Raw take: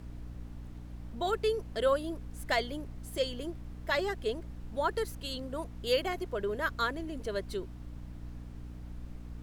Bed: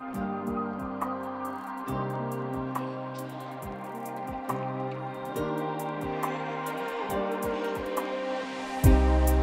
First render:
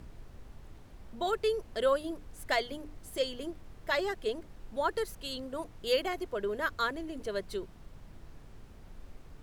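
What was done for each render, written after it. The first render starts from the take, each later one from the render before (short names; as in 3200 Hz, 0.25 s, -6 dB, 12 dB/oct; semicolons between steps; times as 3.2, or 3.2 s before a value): notches 60/120/180/240/300 Hz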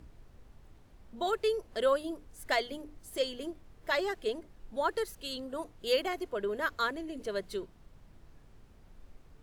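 noise print and reduce 6 dB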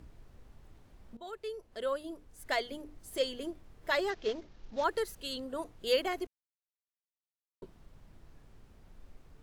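1.17–3.12 fade in, from -15.5 dB; 4.1–4.84 CVSD 32 kbps; 6.27–7.62 mute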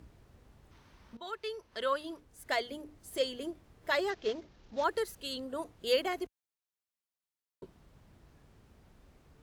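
0.71–2.2 spectral gain 860–6500 Hz +7 dB; HPF 49 Hz 12 dB/oct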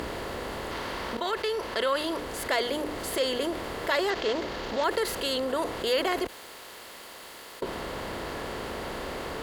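per-bin compression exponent 0.6; fast leveller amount 50%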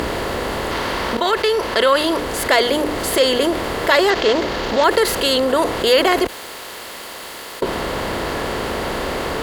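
gain +12 dB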